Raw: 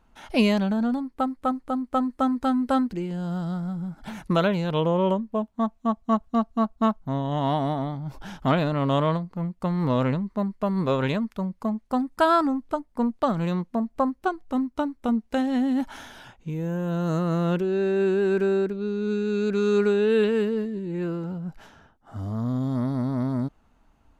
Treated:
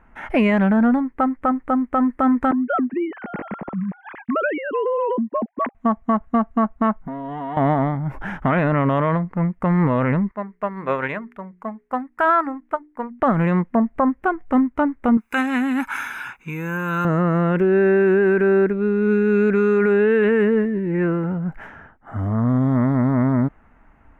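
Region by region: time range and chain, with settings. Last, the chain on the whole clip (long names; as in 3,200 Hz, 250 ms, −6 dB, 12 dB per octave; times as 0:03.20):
0:02.51–0:05.75: three sine waves on the formant tracks + downward compressor 12 to 1, threshold −26 dBFS
0:07.04–0:07.57: comb filter 4.2 ms, depth 97% + downward compressor, threshold −36 dBFS
0:10.31–0:13.20: low-shelf EQ 320 Hz −11.5 dB + mains-hum notches 60/120/180/240/300/360/420 Hz + expander for the loud parts, over −35 dBFS
0:15.17–0:17.05: spectral tilt +4.5 dB per octave + notch filter 4,400 Hz, Q 21 + comb filter 0.8 ms, depth 66%
whole clip: high shelf with overshoot 2,900 Hz −13.5 dB, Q 3; boost into a limiter +16 dB; level −8 dB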